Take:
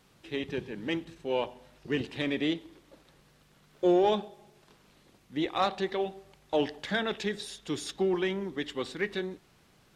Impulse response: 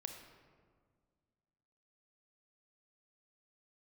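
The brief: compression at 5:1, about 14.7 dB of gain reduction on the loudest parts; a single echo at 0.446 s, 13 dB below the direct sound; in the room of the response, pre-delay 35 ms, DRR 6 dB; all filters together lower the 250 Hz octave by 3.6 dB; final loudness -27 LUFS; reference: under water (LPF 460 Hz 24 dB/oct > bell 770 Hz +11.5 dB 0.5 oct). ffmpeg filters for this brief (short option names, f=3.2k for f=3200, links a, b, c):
-filter_complex "[0:a]equalizer=f=250:t=o:g=-6,acompressor=threshold=-39dB:ratio=5,aecho=1:1:446:0.224,asplit=2[a][b];[1:a]atrim=start_sample=2205,adelay=35[c];[b][c]afir=irnorm=-1:irlink=0,volume=-3dB[d];[a][d]amix=inputs=2:normalize=0,lowpass=f=460:w=0.5412,lowpass=f=460:w=1.3066,equalizer=f=770:t=o:w=0.5:g=11.5,volume=18.5dB"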